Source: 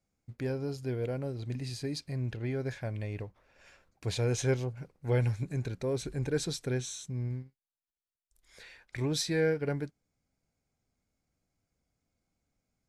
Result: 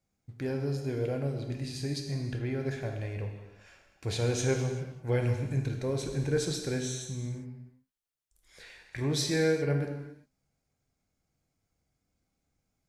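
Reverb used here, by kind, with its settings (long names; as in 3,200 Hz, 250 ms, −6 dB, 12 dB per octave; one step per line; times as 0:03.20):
reverb whose tail is shaped and stops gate 420 ms falling, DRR 2.5 dB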